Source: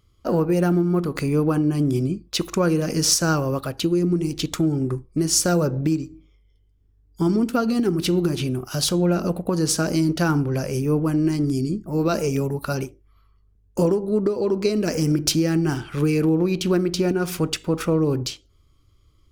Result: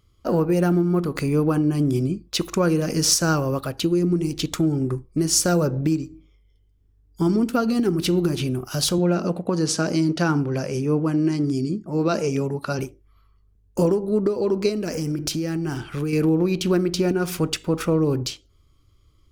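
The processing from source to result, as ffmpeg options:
-filter_complex "[0:a]asettb=1/sr,asplit=3[s0][s1][s2];[s0]atrim=end=8.984[s3];[s1]atrim=start=8.98:end=12.79,asetpts=PTS-STARTPTS,afade=t=in:d=0.004:c=qsin,afade=t=out:st=3.806:d=0.004:c=qsin,highpass=120,lowpass=7400[s4];[s2]atrim=start=12.786[s5];[s3][s4]acrossfade=d=0.004:c1=hsin:c2=qsin[s6];[s6][s5]acrossfade=d=0.004:c1=qsin:c2=hsin,asettb=1/sr,asplit=3[s7][s8][s9];[s7]atrim=end=14.694[s10];[s8]atrim=start=14.69:end=16.13,asetpts=PTS-STARTPTS,afade=t=in:d=0.004:c=qsin,afade=t=out:st=1.436:d=0.004:c=qsin,acompressor=threshold=0.0631:ratio=2.5:attack=3.2:release=140:knee=1:detection=peak[s11];[s9]atrim=start=16.126[s12];[s10][s11]acrossfade=d=0.004:c1=hsin:c2=qsin[s13];[s13][s12]acrossfade=d=0.004:c1=qsin:c2=hsin"

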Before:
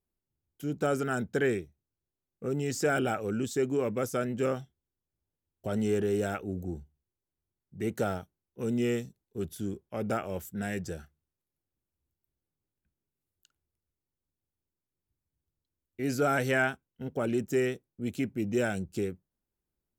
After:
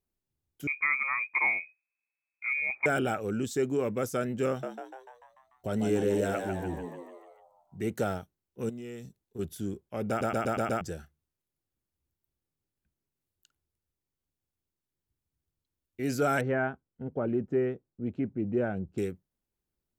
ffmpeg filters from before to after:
-filter_complex "[0:a]asettb=1/sr,asplit=3[s0][s1][s2];[s0]atrim=end=0.674[s3];[s1]atrim=start=0.67:end=2.86,asetpts=PTS-STARTPTS,afade=t=in:d=0.004:c=qsin,afade=t=out:st=2.186:d=0.004:c=qsin,lowpass=f=2200:t=q:w=0.5098,lowpass=f=2200:t=q:w=0.6013,lowpass=f=2200:t=q:w=0.9,lowpass=f=2200:t=q:w=2.563,afreqshift=-2600[s4];[s2]atrim=start=2.856[s5];[s3][s4]acrossfade=d=0.004:c1=hsin:c2=qsin[s6];[s6][s5]acrossfade=d=0.004:c1=qsin:c2=hsin,asettb=1/sr,asplit=3[s7][s8][s9];[s7]atrim=end=4.484[s10];[s8]atrim=start=4.48:end=7.85,asetpts=PTS-STARTPTS,afade=t=in:d=0.004:c=qsin,afade=t=out:st=3.366:d=0.004:c=qsin,asplit=8[s11][s12][s13][s14][s15][s16][s17][s18];[s12]adelay=147,afreqshift=88,volume=0.501[s19];[s13]adelay=294,afreqshift=176,volume=0.282[s20];[s14]adelay=441,afreqshift=264,volume=0.157[s21];[s15]adelay=588,afreqshift=352,volume=0.0881[s22];[s16]adelay=735,afreqshift=440,volume=0.0495[s23];[s17]adelay=882,afreqshift=528,volume=0.0275[s24];[s18]adelay=1029,afreqshift=616,volume=0.0155[s25];[s11][s19][s20][s21][s22][s23][s24][s25]amix=inputs=8:normalize=0,atrim=end_sample=148617[s26];[s9]atrim=start=7.846[s27];[s10][s26]acrossfade=d=0.004:c1=hsin:c2=qsin[s28];[s28][s27]acrossfade=d=0.004:c1=qsin:c2=hsin,asettb=1/sr,asplit=3[s29][s30][s31];[s29]atrim=end=8.694[s32];[s30]atrim=start=8.69:end=9.39,asetpts=PTS-STARTPTS,afade=t=in:d=0.004:c=qsin,afade=t=out:st=0.696:d=0.004:c=qsin,acompressor=threshold=0.0141:ratio=16:attack=3.2:release=140:knee=1:detection=peak[s33];[s31]atrim=start=9.386[s34];[s32][s33]acrossfade=d=0.004:c1=hsin:c2=qsin[s35];[s35][s34]acrossfade=d=0.004:c1=qsin:c2=hsin,asettb=1/sr,asplit=3[s36][s37][s38];[s36]atrim=end=16.414[s39];[s37]atrim=start=16.41:end=18.98,asetpts=PTS-STARTPTS,afade=t=in:d=0.004:c=qsin,afade=t=out:st=2.566:d=0.004:c=qsin,lowpass=1200[s40];[s38]atrim=start=18.976[s41];[s39][s40]acrossfade=d=0.004:c1=hsin:c2=qsin[s42];[s42][s41]acrossfade=d=0.004:c1=qsin:c2=hsin,asplit=7[s43][s44][s45][s46][s47][s48][s49];[s43]atrim=end=10.212[s50];[s44]atrim=start=10.088:end=10.212[s51];[s45]atrim=start=10.088:end=10.212[s52];[s46]atrim=start=10.088:end=10.212[s53];[s47]atrim=start=10.088:end=10.212[s54];[s48]atrim=start=10.088:end=10.212[s55];[s49]atrim=start=10.808[s56];[s50][s51]acrossfade=d=0.004:c1=hsin:c2=hsin[s57];[s57][s52]acrossfade=d=0.004:c1=hsin:c2=hsin[s58];[s58][s53]acrossfade=d=0.004:c1=hsin:c2=hsin[s59];[s59][s54]acrossfade=d=0.004:c1=hsin:c2=hsin[s60];[s60][s55]acrossfade=d=0.004:c1=hsin:c2=hsin[s61];[s61][s56]acrossfade=d=0.004:c1=hsin:c2=hsin"

